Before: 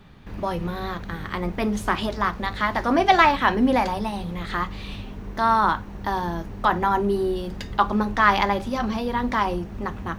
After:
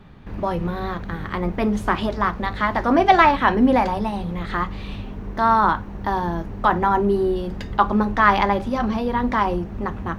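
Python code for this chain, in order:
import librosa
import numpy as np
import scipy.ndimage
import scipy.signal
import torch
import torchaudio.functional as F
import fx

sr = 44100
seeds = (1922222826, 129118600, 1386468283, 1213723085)

y = fx.high_shelf(x, sr, hz=2900.0, db=-9.5)
y = F.gain(torch.from_numpy(y), 3.5).numpy()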